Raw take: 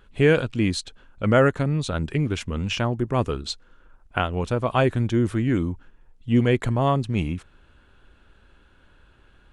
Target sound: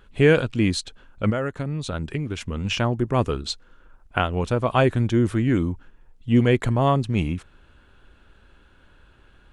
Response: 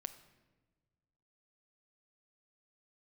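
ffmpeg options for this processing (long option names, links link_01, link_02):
-filter_complex "[0:a]asettb=1/sr,asplit=3[link_01][link_02][link_03];[link_01]atrim=end=1.304[link_04];[link_02]atrim=start=1.3:end=2.65,asetpts=PTS-STARTPTS,afade=type=in:duration=0.004:curve=qsin,afade=type=out:start_time=1.346:duration=0.004:curve=qsin,acompressor=threshold=-26dB:ratio=4[link_05];[link_03]atrim=start=2.646[link_06];[link_04][link_05]acrossfade=duration=0.004:curve1=hsin:curve2=qsin[link_07];[link_07][link_06]acrossfade=duration=0.004:curve1=qsin:curve2=hsin,volume=1.5dB"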